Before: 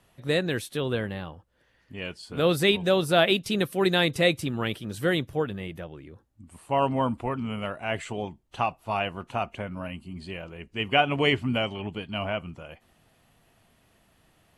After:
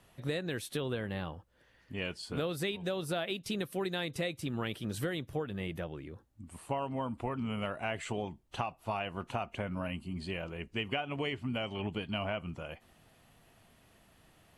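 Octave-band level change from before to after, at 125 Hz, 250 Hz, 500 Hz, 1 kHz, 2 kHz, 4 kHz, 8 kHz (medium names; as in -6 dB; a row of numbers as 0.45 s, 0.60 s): -7.0 dB, -8.0 dB, -10.5 dB, -10.0 dB, -10.5 dB, -11.0 dB, -6.0 dB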